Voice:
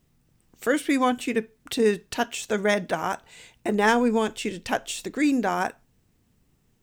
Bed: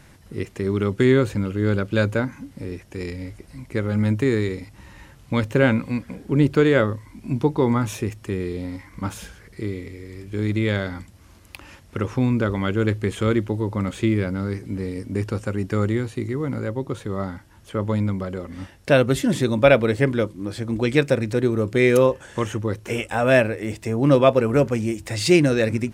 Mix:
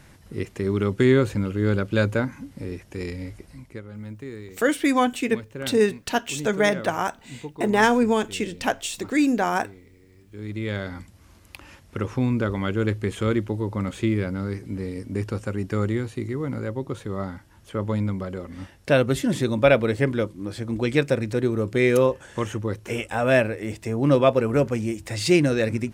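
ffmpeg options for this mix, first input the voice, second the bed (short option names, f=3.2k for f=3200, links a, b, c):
-filter_complex "[0:a]adelay=3950,volume=2dB[a];[1:a]volume=13dB,afade=t=out:st=3.42:d=0.4:silence=0.16788,afade=t=in:st=10.27:d=0.77:silence=0.199526[b];[a][b]amix=inputs=2:normalize=0"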